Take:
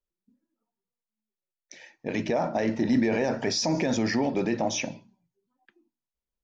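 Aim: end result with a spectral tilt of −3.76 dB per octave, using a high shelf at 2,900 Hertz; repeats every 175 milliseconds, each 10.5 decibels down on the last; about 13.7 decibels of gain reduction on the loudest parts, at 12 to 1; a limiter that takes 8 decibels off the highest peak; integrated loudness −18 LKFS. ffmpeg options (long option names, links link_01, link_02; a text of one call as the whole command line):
ffmpeg -i in.wav -af "highshelf=frequency=2900:gain=7,acompressor=threshold=-33dB:ratio=12,alimiter=level_in=5.5dB:limit=-24dB:level=0:latency=1,volume=-5.5dB,aecho=1:1:175|350|525:0.299|0.0896|0.0269,volume=21.5dB" out.wav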